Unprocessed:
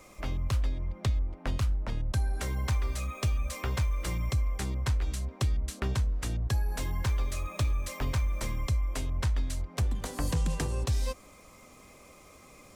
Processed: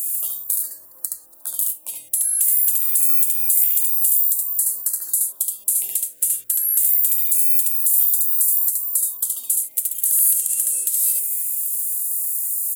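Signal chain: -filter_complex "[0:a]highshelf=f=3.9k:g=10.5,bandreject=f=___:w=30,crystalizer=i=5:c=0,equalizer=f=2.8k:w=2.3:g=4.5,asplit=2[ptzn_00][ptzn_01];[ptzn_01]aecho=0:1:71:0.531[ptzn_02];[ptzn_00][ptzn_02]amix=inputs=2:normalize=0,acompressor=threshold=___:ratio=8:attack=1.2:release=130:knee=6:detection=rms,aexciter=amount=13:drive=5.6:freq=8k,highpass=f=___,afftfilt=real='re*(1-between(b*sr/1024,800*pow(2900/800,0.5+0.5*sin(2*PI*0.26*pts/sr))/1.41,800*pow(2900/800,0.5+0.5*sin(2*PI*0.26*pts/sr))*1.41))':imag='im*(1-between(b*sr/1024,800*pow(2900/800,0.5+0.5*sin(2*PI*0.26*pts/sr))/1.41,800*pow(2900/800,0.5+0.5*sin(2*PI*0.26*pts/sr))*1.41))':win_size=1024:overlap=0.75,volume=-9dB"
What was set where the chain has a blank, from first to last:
2.3k, -21dB, 430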